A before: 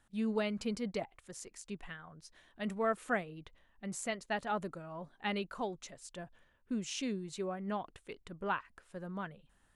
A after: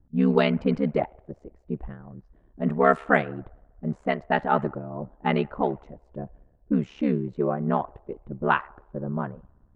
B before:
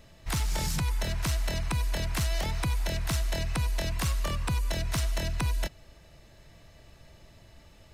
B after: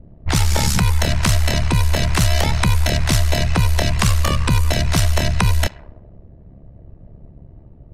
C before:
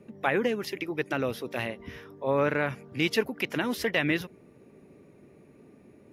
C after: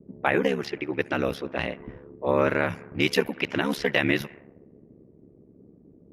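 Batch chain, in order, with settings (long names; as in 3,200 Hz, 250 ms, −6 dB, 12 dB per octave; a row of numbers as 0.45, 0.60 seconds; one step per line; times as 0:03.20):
delay with a band-pass on its return 65 ms, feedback 81%, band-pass 1,300 Hz, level −23.5 dB
low-pass that shuts in the quiet parts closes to 310 Hz, open at −25 dBFS
ring modulation 35 Hz
normalise the peak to −6 dBFS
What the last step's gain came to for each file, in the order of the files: +16.0, +16.0, +6.0 decibels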